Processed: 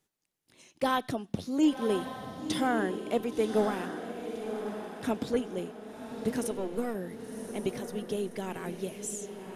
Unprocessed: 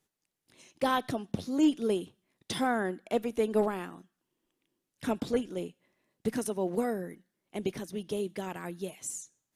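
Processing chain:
0:06.51–0:06.95: gain on one half-wave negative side −7 dB
feedback delay with all-pass diffusion 1,067 ms, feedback 42%, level −7.5 dB

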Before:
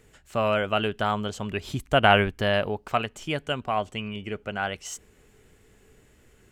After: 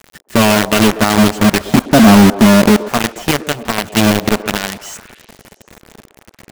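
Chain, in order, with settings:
0:01.73–0:02.83: octave-band graphic EQ 250/500/1,000/2,000 Hz +11/+4/+5/−7 dB
in parallel at +2 dB: downward compressor 5 to 1, threshold −29 dBFS, peak gain reduction 18 dB
on the sum: notch comb filter 260 Hz
hollow resonant body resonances 230/1,800 Hz, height 18 dB, ringing for 45 ms
log-companded quantiser 2 bits
on a send: echo through a band-pass that steps 120 ms, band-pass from 430 Hz, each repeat 0.7 octaves, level −11 dB
on the sum: level −3.5 dB

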